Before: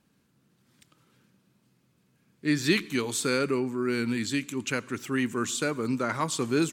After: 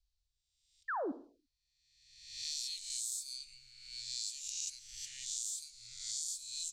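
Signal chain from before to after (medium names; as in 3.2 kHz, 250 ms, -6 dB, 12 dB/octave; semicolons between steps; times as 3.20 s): reverse spectral sustain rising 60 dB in 1.39 s; inverse Chebyshev band-stop 200–1100 Hz, stop band 80 dB; level-controlled noise filter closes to 1.6 kHz, open at -28.5 dBFS; peaking EQ 4.2 kHz +3.5 dB 0.45 oct; compression 16:1, threshold -46 dBFS, peak gain reduction 22 dB; painted sound fall, 0.88–1.12 s, 240–1900 Hz -45 dBFS; on a send: reverberation, pre-delay 47 ms, DRR 15 dB; on the sum: trim +9 dB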